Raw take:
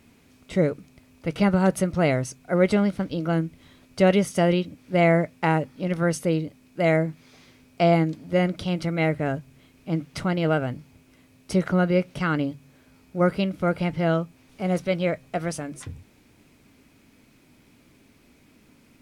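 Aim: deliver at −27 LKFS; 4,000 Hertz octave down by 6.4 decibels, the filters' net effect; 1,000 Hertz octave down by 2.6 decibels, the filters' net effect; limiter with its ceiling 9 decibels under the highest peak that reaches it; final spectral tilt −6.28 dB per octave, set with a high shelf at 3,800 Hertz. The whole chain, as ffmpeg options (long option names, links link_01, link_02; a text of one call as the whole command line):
ffmpeg -i in.wav -af "equalizer=frequency=1000:width_type=o:gain=-3.5,highshelf=frequency=3800:gain=-7,equalizer=frequency=4000:width_type=o:gain=-5,volume=1dB,alimiter=limit=-14.5dB:level=0:latency=1" out.wav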